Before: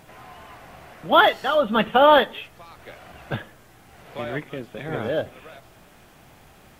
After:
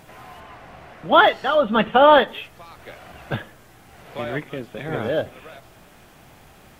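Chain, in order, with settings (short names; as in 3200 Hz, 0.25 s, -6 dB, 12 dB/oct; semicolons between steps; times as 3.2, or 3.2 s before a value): 0.4–2.28 high shelf 6800 Hz -11.5 dB; gain +2 dB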